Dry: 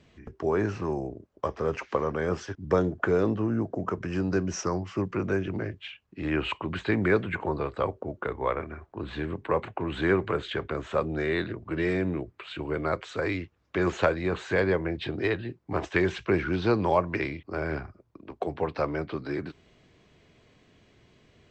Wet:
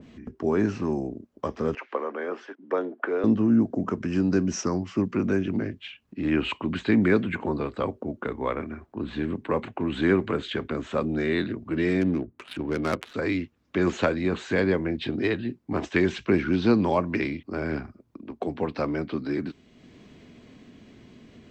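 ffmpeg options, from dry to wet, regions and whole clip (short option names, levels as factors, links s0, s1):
-filter_complex "[0:a]asettb=1/sr,asplit=3[s0][s1][s2];[s0]atrim=end=1.754[s3];[s1]atrim=start=1.75:end=3.24,asetpts=PTS-STARTPTS,afade=t=in:d=0.004:c=qsin,afade=t=out:st=1.486:d=0.004:c=qsin,highpass=f=220:w=0.5412,highpass=f=220:w=1.3066,acrossover=split=360 3000:gain=0.1 1 0.0794[s4][s5][s6];[s4][s5][s6]amix=inputs=3:normalize=0[s7];[s2]atrim=start=3.236[s8];[s3][s7]acrossfade=d=0.004:c1=hsin:c2=qsin[s9];[s9][s8]acrossfade=d=0.004:c1=qsin:c2=hsin,asettb=1/sr,asplit=3[s10][s11][s12];[s10]atrim=end=12.014[s13];[s11]atrim=start=12.01:end=13.14,asetpts=PTS-STARTPTS,afade=t=in:d=0.004:c=qsin,afade=t=out:st=1.126:d=0.004:c=qsin,highshelf=f=2700:g=10.5,adynamicsmooth=sensitivity=4:basefreq=810[s14];[s12]atrim=start=13.136[s15];[s13][s14]acrossfade=d=0.004:c1=hsin:c2=qsin[s16];[s16][s15]acrossfade=d=0.004:c1=qsin:c2=hsin,equalizer=f=240:t=o:w=0.76:g=13,acompressor=mode=upward:threshold=0.0112:ratio=2.5,adynamicequalizer=threshold=0.0112:dfrequency=2000:dqfactor=0.7:tfrequency=2000:tqfactor=0.7:attack=5:release=100:ratio=0.375:range=2.5:mode=boostabove:tftype=highshelf,volume=0.794"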